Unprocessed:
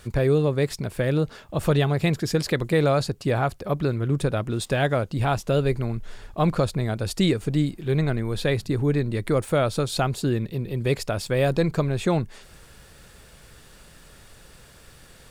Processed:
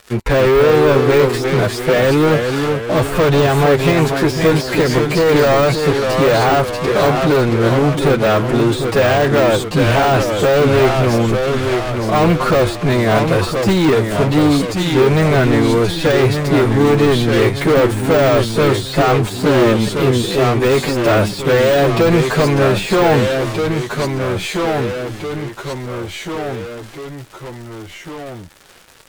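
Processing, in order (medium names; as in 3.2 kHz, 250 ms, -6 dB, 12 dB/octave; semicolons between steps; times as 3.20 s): time stretch by phase-locked vocoder 1.9×; tone controls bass -11 dB, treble -7 dB; waveshaping leveller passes 5; ever faster or slower copies 270 ms, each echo -1 st, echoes 3, each echo -6 dB; de-esser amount 50%; trim +2.5 dB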